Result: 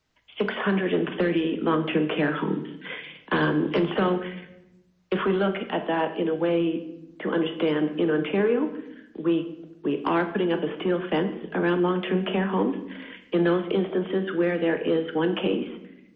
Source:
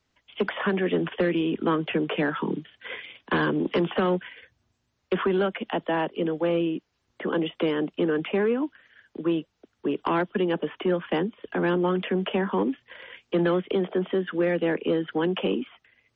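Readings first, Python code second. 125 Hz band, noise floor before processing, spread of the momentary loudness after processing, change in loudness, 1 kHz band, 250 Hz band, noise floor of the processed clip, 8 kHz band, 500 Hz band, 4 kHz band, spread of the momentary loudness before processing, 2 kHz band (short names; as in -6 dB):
+1.5 dB, -75 dBFS, 11 LU, +1.0 dB, +1.0 dB, +1.5 dB, -56 dBFS, n/a, +1.0 dB, +1.0 dB, 9 LU, +1.0 dB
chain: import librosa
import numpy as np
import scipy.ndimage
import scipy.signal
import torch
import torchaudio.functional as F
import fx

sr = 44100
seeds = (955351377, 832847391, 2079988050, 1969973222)

y = fx.room_shoebox(x, sr, seeds[0], volume_m3=270.0, walls='mixed', distance_m=0.54)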